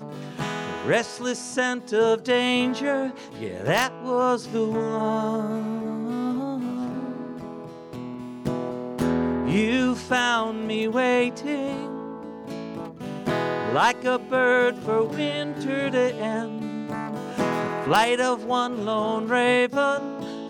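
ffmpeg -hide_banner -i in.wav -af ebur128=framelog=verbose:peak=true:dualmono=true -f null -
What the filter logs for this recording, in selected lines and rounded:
Integrated loudness:
  I:         -21.5 LUFS
  Threshold: -31.9 LUFS
Loudness range:
  LRA:         5.2 LU
  Threshold: -42.1 LUFS
  LRA low:   -25.5 LUFS
  LRA high:  -20.3 LUFS
True peak:
  Peak:       -8.9 dBFS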